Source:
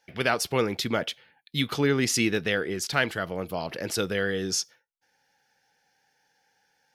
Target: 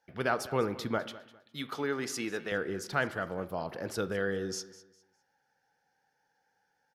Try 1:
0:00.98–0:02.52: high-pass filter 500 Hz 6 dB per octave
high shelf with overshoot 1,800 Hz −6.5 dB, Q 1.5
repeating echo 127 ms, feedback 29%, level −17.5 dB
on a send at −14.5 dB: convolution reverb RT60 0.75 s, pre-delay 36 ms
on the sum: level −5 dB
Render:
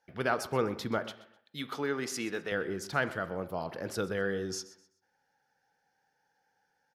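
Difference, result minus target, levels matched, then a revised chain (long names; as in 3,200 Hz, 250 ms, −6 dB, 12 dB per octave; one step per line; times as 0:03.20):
echo 76 ms early
0:00.98–0:02.52: high-pass filter 500 Hz 6 dB per octave
high shelf with overshoot 1,800 Hz −6.5 dB, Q 1.5
repeating echo 203 ms, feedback 29%, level −17.5 dB
on a send at −14.5 dB: convolution reverb RT60 0.75 s, pre-delay 36 ms
on the sum: level −5 dB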